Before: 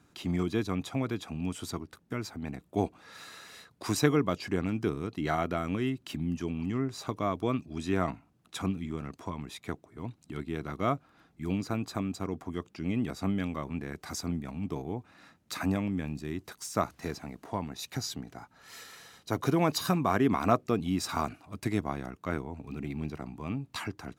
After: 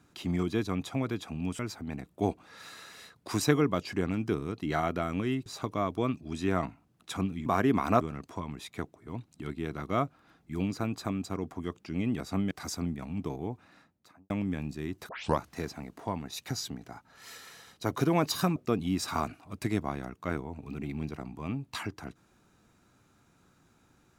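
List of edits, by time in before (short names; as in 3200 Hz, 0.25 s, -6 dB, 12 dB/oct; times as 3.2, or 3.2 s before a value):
1.59–2.14 cut
6.01–6.91 cut
13.41–13.97 cut
14.99–15.76 studio fade out
16.55 tape start 0.30 s
20.02–20.57 move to 8.91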